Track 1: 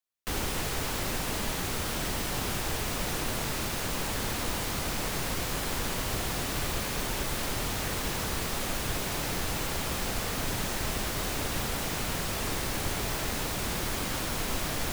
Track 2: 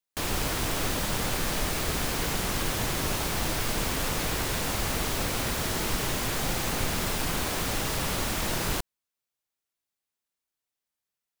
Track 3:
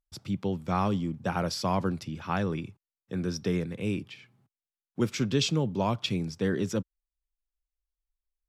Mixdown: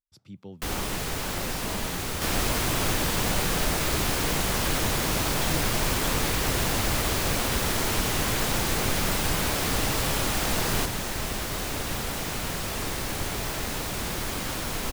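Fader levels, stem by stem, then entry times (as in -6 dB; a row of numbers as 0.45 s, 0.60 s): +1.0 dB, +1.5 dB, -12.5 dB; 0.35 s, 2.05 s, 0.00 s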